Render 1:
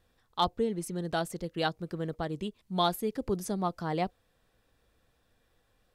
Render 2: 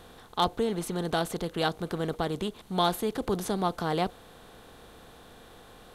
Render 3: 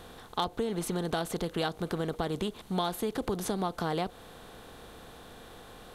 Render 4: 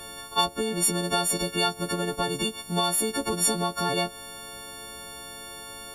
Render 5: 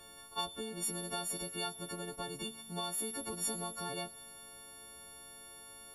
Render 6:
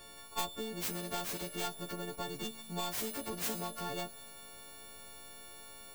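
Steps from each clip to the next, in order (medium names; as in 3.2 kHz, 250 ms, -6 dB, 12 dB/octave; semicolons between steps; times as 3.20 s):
spectral levelling over time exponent 0.6
compression 6:1, threshold -29 dBFS, peak gain reduction 9 dB; trim +2 dB
partials quantised in pitch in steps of 4 st; trim +3 dB
feedback comb 75 Hz, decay 1.8 s, mix 70%; trim -4.5 dB
tracing distortion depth 0.41 ms; trim +1.5 dB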